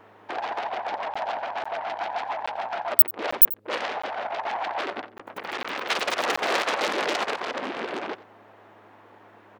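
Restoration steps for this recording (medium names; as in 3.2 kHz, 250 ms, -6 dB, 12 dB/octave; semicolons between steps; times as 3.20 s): de-hum 104.4 Hz, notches 5; interpolate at 1.14/1.64/2.46/3.31/4.02/5.18/5.63/6.36 s, 15 ms; inverse comb 89 ms -18.5 dB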